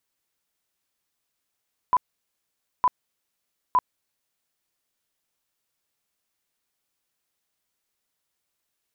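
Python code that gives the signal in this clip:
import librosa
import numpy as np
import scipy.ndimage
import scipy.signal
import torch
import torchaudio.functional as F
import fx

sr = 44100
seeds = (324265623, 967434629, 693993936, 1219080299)

y = fx.tone_burst(sr, hz=1000.0, cycles=38, every_s=0.91, bursts=3, level_db=-15.0)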